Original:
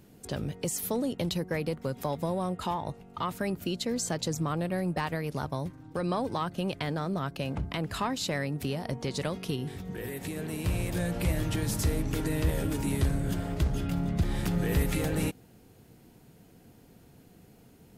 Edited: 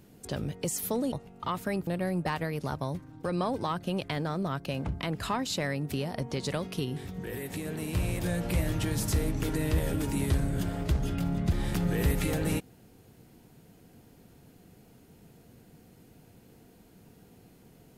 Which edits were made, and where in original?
0:01.12–0:02.86: remove
0:03.61–0:04.58: remove

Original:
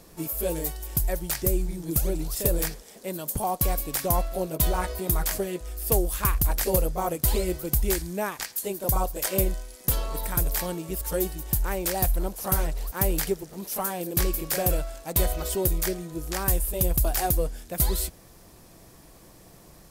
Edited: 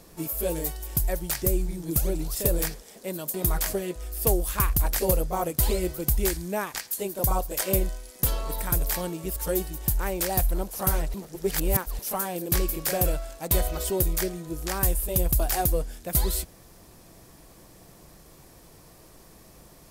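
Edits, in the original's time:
0:03.34–0:04.99: remove
0:12.79–0:13.64: reverse

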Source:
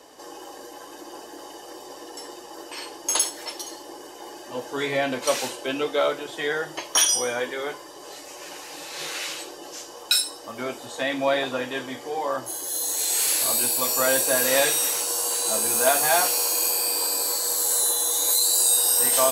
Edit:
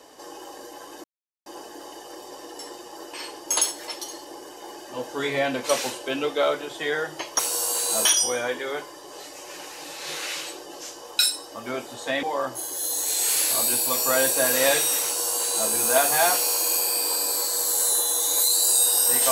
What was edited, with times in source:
0:01.04: splice in silence 0.42 s
0:11.15–0:12.14: remove
0:14.95–0:15.61: duplicate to 0:06.97

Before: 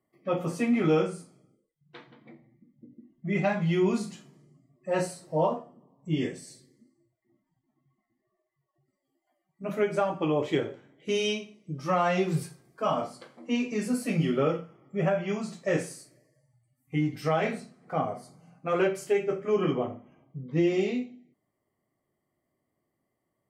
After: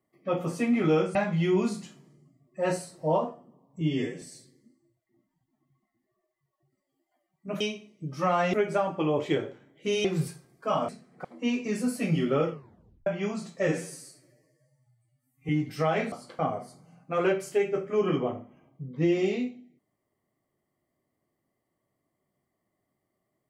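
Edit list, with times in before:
0:01.15–0:03.44: remove
0:06.10–0:06.37: time-stretch 1.5×
0:11.27–0:12.20: move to 0:09.76
0:13.04–0:13.31: swap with 0:17.58–0:17.94
0:14.58: tape stop 0.55 s
0:15.74–0:16.95: time-stretch 1.5×

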